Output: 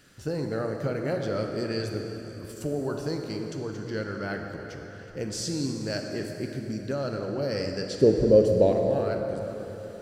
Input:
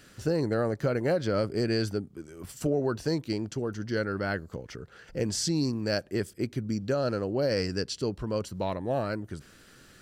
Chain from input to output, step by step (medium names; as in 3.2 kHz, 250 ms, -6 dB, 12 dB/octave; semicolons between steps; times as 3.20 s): 7.91–8.72 s: resonant low shelf 750 Hz +11 dB, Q 3; plate-style reverb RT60 3.8 s, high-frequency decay 0.75×, DRR 2.5 dB; trim -3.5 dB